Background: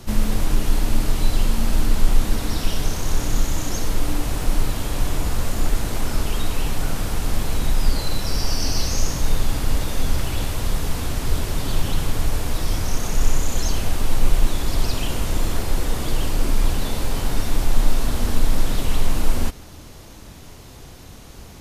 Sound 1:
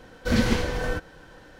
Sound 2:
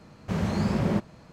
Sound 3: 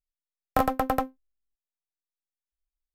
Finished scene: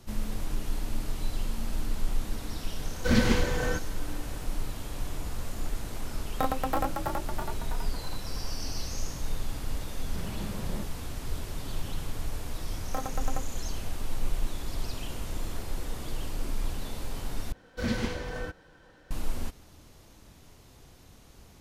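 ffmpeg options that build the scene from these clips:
-filter_complex "[1:a]asplit=2[a][b];[3:a]asplit=2[c][d];[0:a]volume=-12.5dB[e];[a]bandreject=f=680:w=12[f];[c]asplit=9[g][h][i][j][k][l][m][n][o];[h]adelay=326,afreqshift=50,volume=-3dB[p];[i]adelay=652,afreqshift=100,volume=-8.2dB[q];[j]adelay=978,afreqshift=150,volume=-13.4dB[r];[k]adelay=1304,afreqshift=200,volume=-18.6dB[s];[l]adelay=1630,afreqshift=250,volume=-23.8dB[t];[m]adelay=1956,afreqshift=300,volume=-29dB[u];[n]adelay=2282,afreqshift=350,volume=-34.2dB[v];[o]adelay=2608,afreqshift=400,volume=-39.3dB[w];[g][p][q][r][s][t][u][v][w]amix=inputs=9:normalize=0[x];[e]asplit=2[y][z];[y]atrim=end=17.524[aa];[b]atrim=end=1.59,asetpts=PTS-STARTPTS,volume=-8dB[ab];[z]atrim=start=19.106[ac];[f]atrim=end=1.59,asetpts=PTS-STARTPTS,volume=-1.5dB,afade=t=in:d=0.004:c=hsin,afade=t=out:st=1.586:d=0.004:c=hsin,adelay=2790[ad];[x]atrim=end=2.94,asetpts=PTS-STARTPTS,volume=-5.5dB,afade=t=in:d=0.004:c=hsin,afade=t=out:st=2.936:d=0.004:c=hsin,adelay=5840[ae];[2:a]atrim=end=1.32,asetpts=PTS-STARTPTS,volume=-13dB,afade=t=in:d=0.004:c=hsin,afade=t=out:st=1.316:d=0.004:c=hsin,adelay=9840[af];[d]atrim=end=2.94,asetpts=PTS-STARTPTS,volume=-12dB,afade=t=in:d=0.004:c=hsin,afade=t=out:st=2.936:d=0.004:c=hsin,adelay=12380[ag];[aa][ab]acrossfade=d=0.004:c1=hsin:c2=hsin[ah];[ah][ac]acrossfade=d=0.004:c1=hsin:c2=hsin[ai];[ai][ad][ae][af][ag]amix=inputs=5:normalize=0"

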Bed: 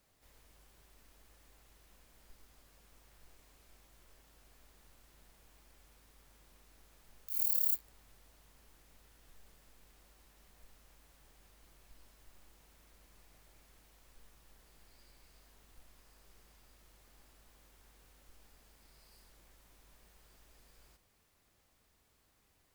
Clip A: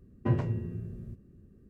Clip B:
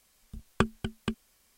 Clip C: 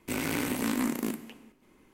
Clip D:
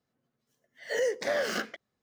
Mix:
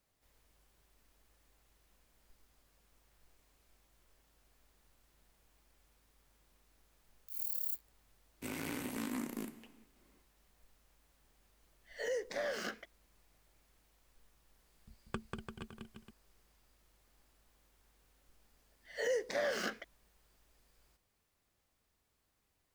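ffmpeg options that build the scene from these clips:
-filter_complex "[4:a]asplit=2[a][b];[0:a]volume=-7dB[c];[2:a]aecho=1:1:190|342|463.6|560.9|638.7:0.631|0.398|0.251|0.158|0.1[d];[3:a]atrim=end=1.93,asetpts=PTS-STARTPTS,volume=-10.5dB,afade=t=in:d=0.1,afade=t=out:st=1.83:d=0.1,adelay=367794S[e];[a]atrim=end=2.02,asetpts=PTS-STARTPTS,volume=-9dB,afade=t=in:d=0.004:c=hsin,afade=t=out:st=2.016:d=0.004:c=hsin,adelay=11090[f];[d]atrim=end=1.57,asetpts=PTS-STARTPTS,volume=-15.5dB,afade=t=in:d=0.004:c=hsin,afade=t=out:st=1.566:d=0.004:c=hsin,adelay=14540[g];[b]atrim=end=2.02,asetpts=PTS-STARTPTS,volume=-6dB,afade=t=in:d=0.004:c=hsin,afade=t=out:st=2.016:d=0.004:c=hsin,adelay=18080[h];[c][e][f][g][h]amix=inputs=5:normalize=0"

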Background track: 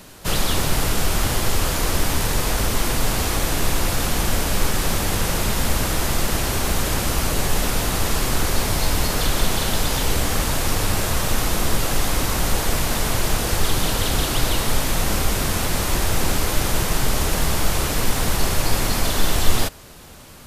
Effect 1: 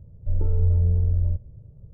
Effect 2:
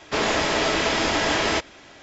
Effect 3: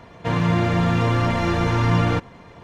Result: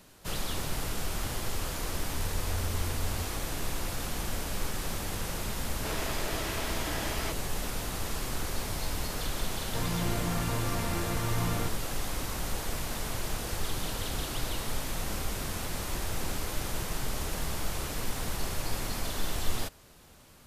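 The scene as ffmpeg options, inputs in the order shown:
-filter_complex "[0:a]volume=-13dB[a];[1:a]atrim=end=1.93,asetpts=PTS-STARTPTS,volume=-15dB,afade=t=in:d=0.004:c=hsin,afade=t=out:st=1.926:d=0.004:c=hsin,adelay=1900[b];[2:a]atrim=end=2.02,asetpts=PTS-STARTPTS,volume=-15dB,afade=t=in:d=0.004:c=hsin,afade=t=out:st=2.016:d=0.004:c=hsin,adelay=5720[c];[3:a]atrim=end=2.63,asetpts=PTS-STARTPTS,volume=-13.5dB,afade=t=in:d=0.004:c=hsin,afade=t=out:st=2.626:d=0.004:c=hsin,adelay=9490[d];[a][b][c][d]amix=inputs=4:normalize=0"

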